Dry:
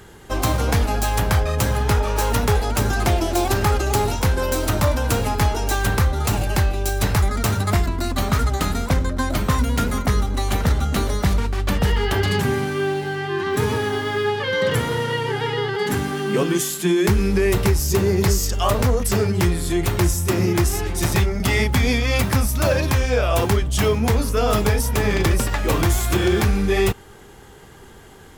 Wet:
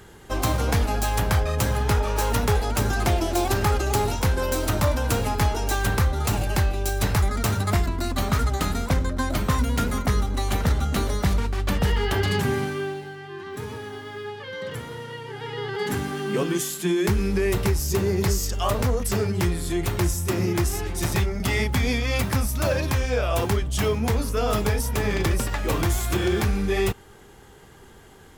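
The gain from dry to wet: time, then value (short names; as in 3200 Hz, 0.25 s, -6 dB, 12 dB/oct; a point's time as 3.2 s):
12.64 s -3 dB
13.17 s -13 dB
15.28 s -13 dB
15.8 s -4.5 dB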